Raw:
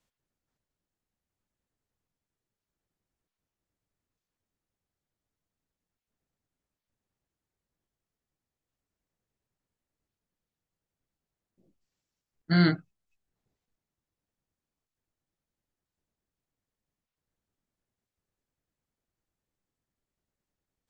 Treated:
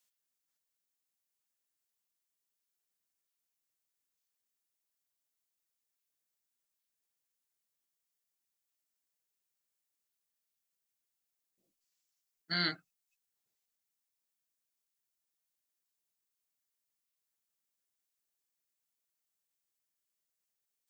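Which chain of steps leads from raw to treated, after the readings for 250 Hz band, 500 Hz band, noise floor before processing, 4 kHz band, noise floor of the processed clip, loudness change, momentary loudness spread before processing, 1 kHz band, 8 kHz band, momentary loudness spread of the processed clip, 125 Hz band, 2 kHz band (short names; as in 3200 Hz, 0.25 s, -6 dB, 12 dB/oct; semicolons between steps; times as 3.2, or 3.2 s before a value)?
-18.0 dB, -13.5 dB, under -85 dBFS, +1.5 dB, under -85 dBFS, -9.0 dB, 9 LU, -7.0 dB, n/a, 10 LU, -19.5 dB, -4.5 dB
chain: tilt +4.5 dB/oct; gain -8 dB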